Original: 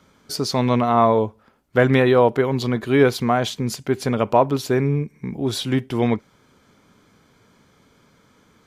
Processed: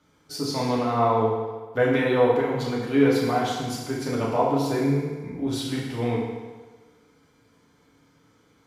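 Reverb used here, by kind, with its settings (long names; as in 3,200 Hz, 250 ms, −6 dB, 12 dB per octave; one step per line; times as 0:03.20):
feedback delay network reverb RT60 1.4 s, low-frequency decay 0.8×, high-frequency decay 0.85×, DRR −5.5 dB
level −11 dB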